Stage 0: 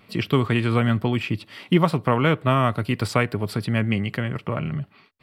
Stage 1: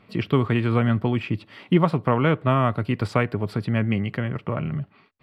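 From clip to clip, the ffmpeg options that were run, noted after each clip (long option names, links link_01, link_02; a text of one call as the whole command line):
ffmpeg -i in.wav -af "lowpass=frequency=2000:poles=1" out.wav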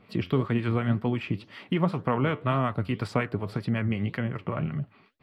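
ffmpeg -i in.wav -filter_complex "[0:a]acrossover=split=800[link_01][link_02];[link_01]aeval=exprs='val(0)*(1-0.5/2+0.5/2*cos(2*PI*5.4*n/s))':channel_layout=same[link_03];[link_02]aeval=exprs='val(0)*(1-0.5/2-0.5/2*cos(2*PI*5.4*n/s))':channel_layout=same[link_04];[link_03][link_04]amix=inputs=2:normalize=0,acompressor=threshold=-28dB:ratio=1.5,flanger=delay=4:depth=7.4:regen=78:speed=1.9:shape=sinusoidal,volume=5dB" out.wav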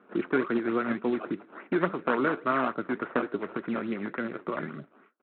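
ffmpeg -i in.wav -af "acrusher=samples=16:mix=1:aa=0.000001:lfo=1:lforange=16:lforate=3.5,highpass=frequency=230:width=0.5412,highpass=frequency=230:width=1.3066,equalizer=frequency=350:width_type=q:width=4:gain=5,equalizer=frequency=800:width_type=q:width=4:gain=-4,equalizer=frequency=1400:width_type=q:width=4:gain=8,lowpass=frequency=2200:width=0.5412,lowpass=frequency=2200:width=1.3066,aresample=8000,acrusher=bits=6:mode=log:mix=0:aa=0.000001,aresample=44100" out.wav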